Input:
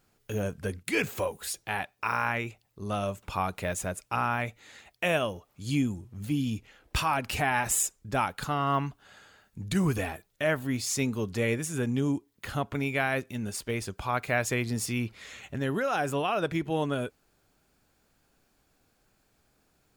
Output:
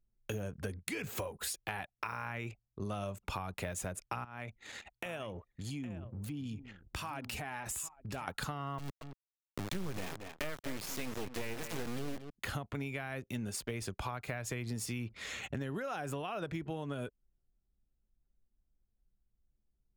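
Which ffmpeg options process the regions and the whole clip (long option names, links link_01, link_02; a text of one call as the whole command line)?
ffmpeg -i in.wav -filter_complex "[0:a]asettb=1/sr,asplit=3[link_01][link_02][link_03];[link_01]atrim=end=4.244[link_04];[link_02]atrim=start=4.24:end=8.28,asetpts=PTS-STARTPTS,afade=type=in:duration=0.004:curve=qsin,afade=type=out:start_time=4.036:duration=0.004:curve=qsin,acompressor=threshold=-43dB:ratio=4:attack=3.2:release=140:knee=1:detection=peak,highshelf=frequency=6700:gain=3,aecho=1:1:812:0.224,atrim=end_sample=178164[link_05];[link_03]atrim=start=8.276[link_06];[link_04][link_05]acrossfade=duration=0.004:curve1=hsin:curve2=qsin[link_07];[link_07][link_06]acrossfade=duration=0.004:curve1=qsin:curve2=hsin,asettb=1/sr,asplit=3[link_08][link_09][link_10];[link_08]atrim=end=8.784[link_11];[link_09]atrim=start=8.78:end=12.3,asetpts=PTS-STARTPTS,afade=type=in:duration=0.004:curve=qsin,afade=type=out:start_time=3.516:duration=0.004:curve=qsin,lowpass=5300,acrusher=bits=3:dc=4:mix=0:aa=0.000001,aecho=1:1:230:0.188,atrim=end_sample=155232[link_12];[link_10]atrim=start=12.296[link_13];[link_11][link_12]acrossfade=duration=0.004:curve1=hsin:curve2=qsin[link_14];[link_14][link_13]acrossfade=duration=0.004:curve1=qsin:curve2=hsin,acrossover=split=140[link_15][link_16];[link_16]acompressor=threshold=-31dB:ratio=6[link_17];[link_15][link_17]amix=inputs=2:normalize=0,anlmdn=0.00251,acompressor=threshold=-39dB:ratio=6,volume=3.5dB" out.wav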